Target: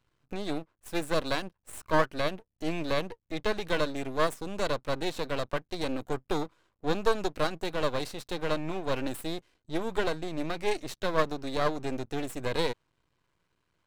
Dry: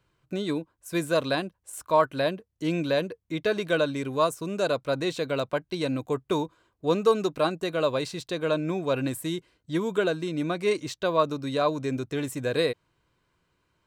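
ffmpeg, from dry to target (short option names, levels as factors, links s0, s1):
-af "aeval=exprs='max(val(0),0)':c=same"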